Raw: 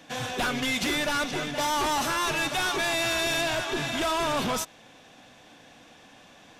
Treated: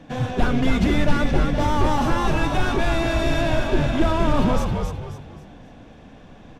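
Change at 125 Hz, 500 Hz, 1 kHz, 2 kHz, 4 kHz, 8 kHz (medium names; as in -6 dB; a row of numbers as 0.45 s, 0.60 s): +16.5 dB, +6.5 dB, +3.5 dB, -0.5 dB, -4.0 dB, -8.0 dB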